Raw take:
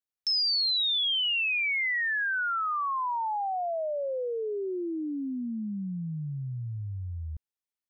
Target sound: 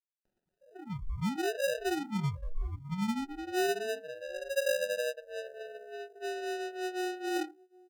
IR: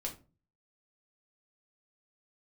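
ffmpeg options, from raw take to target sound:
-filter_complex "[0:a]areverse,acompressor=mode=upward:threshold=-31dB:ratio=2.5,areverse[a];[1:a]atrim=start_sample=2205,asetrate=61740,aresample=44100[b];[a][b]afir=irnorm=-1:irlink=0,aeval=exprs='sgn(val(0))*max(abs(val(0))-0.00237,0)':c=same,aemphasis=mode=production:type=cd,asetrate=25476,aresample=44100,atempo=1.73107,aeval=exprs='0.0531*(abs(mod(val(0)/0.0531+3,4)-2)-1)':c=same,lowpass=f=2.6k:t=q:w=0.5098,lowpass=f=2.6k:t=q:w=0.6013,lowpass=f=2.6k:t=q:w=0.9,lowpass=f=2.6k:t=q:w=2.563,afreqshift=-3000,highpass=f=1.1k:w=0.5412,highpass=f=1.1k:w=1.3066,aecho=1:1:5.4:0.61,aecho=1:1:762:0.075,acrusher=samples=40:mix=1:aa=0.000001,afftdn=nr=19:nf=-42,volume=-2.5dB"

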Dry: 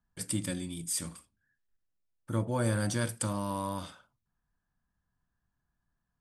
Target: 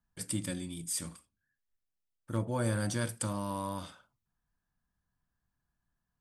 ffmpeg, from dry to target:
-filter_complex "[0:a]asettb=1/sr,asplit=3[a][b][c];[a]atrim=end=1.164[d];[b]atrim=start=1.16:end=2.38,asetpts=PTS-STARTPTS,afade=t=in:d=0.004:c=qsin,afade=t=out:st=1.216:d=0.004:c=qsin,aeval=exprs='0.133*(cos(1*acos(clip(val(0)/0.133,-1,1)))-cos(1*PI/2))+0.00668*(cos(7*acos(clip(val(0)/0.133,-1,1)))-cos(7*PI/2))':c=same[e];[c]atrim=start=2.376[f];[d][e]acrossfade=d=0.004:c1=hsin:c2=qsin[g];[g][f]acrossfade=d=0.004:c1=qsin:c2=hsin,volume=-2dB"

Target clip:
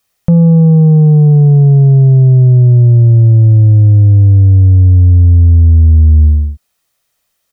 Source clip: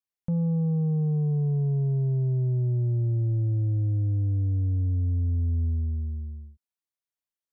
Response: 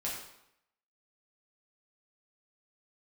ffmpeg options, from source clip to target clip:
-af "aecho=1:1:1.6:0.34,alimiter=level_in=28dB:limit=-1dB:release=50:level=0:latency=1,volume=-1dB"

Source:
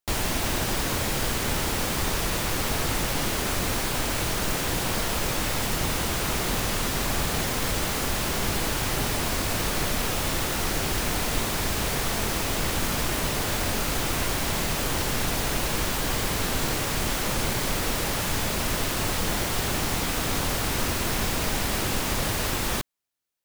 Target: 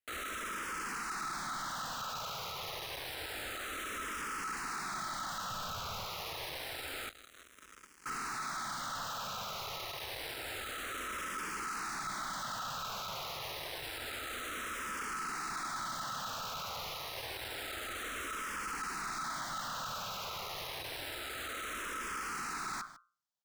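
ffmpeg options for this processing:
-filter_complex "[0:a]highshelf=f=7.2k:g=-9,bandreject=f=60:t=h:w=6,bandreject=f=120:t=h:w=6,bandreject=f=180:t=h:w=6,bandreject=f=240:t=h:w=6,aecho=1:1:151:0.0794,asoftclip=type=tanh:threshold=-25.5dB,aeval=exprs='val(0)*sin(2*PI*1300*n/s)':c=same,asettb=1/sr,asplit=3[a][b][c];[a]atrim=end=5.504[d];[b]atrim=start=5.5:end=6.04,asetpts=PTS-STARTPTS,afade=t=in:d=0.004:c=qsin,afade=t=out:st=0.536:d=0.004:c=qsin,lowshelf=f=140:g=11[e];[c]atrim=start=6.036[f];[d][e]acrossfade=d=0.004:c1=hsin:c2=qsin[g];[g][f]acrossfade=d=0.004:c1=qsin:c2=hsin,asettb=1/sr,asplit=3[h][i][j];[h]atrim=end=7.094[k];[i]atrim=start=7.09:end=8.06,asetpts=PTS-STARTPTS,afade=t=in:d=0.004:c=qsin,afade=t=out:st=0.966:d=0.004:c=qsin,acrusher=bits=3:mix=0:aa=0.5[l];[j]atrim=start=8.056[m];[k][l]acrossfade=d=0.004:c1=hsin:c2=qsin[n];[n][m]acrossfade=d=0.004:c1=qsin:c2=hsin,volume=35dB,asoftclip=hard,volume=-35dB,asplit=2[o][p];[p]afreqshift=-0.28[q];[o][q]amix=inputs=2:normalize=1"

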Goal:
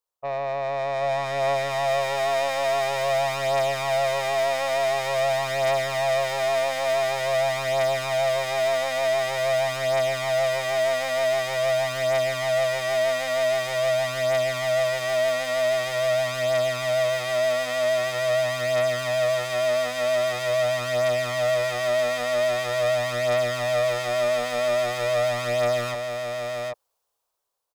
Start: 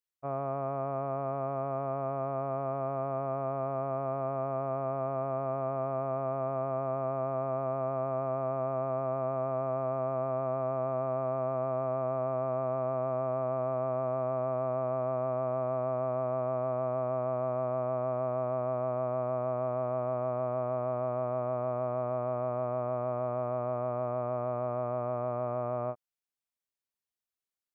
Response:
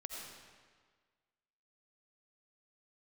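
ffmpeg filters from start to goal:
-filter_complex "[0:a]equalizer=f=125:t=o:w=1:g=-4,equalizer=f=250:t=o:w=1:g=-12,equalizer=f=500:t=o:w=1:g=10,equalizer=f=1k:t=o:w=1:g=9,equalizer=f=2k:t=o:w=1:g=-8,dynaudnorm=f=310:g=9:m=16dB,asoftclip=type=tanh:threshold=-28dB,asplit=2[a][b];[b]aecho=0:1:784:0.596[c];[a][c]amix=inputs=2:normalize=0,volume=3.5dB"

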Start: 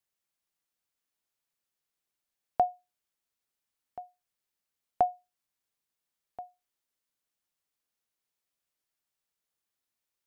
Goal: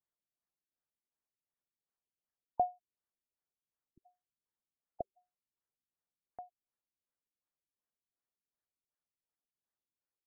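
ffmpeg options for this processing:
-af "afftfilt=real='re*lt(b*sr/1024,360*pow(2100/360,0.5+0.5*sin(2*PI*2.7*pts/sr)))':imag='im*lt(b*sr/1024,360*pow(2100/360,0.5+0.5*sin(2*PI*2.7*pts/sr)))':win_size=1024:overlap=0.75,volume=-5.5dB"

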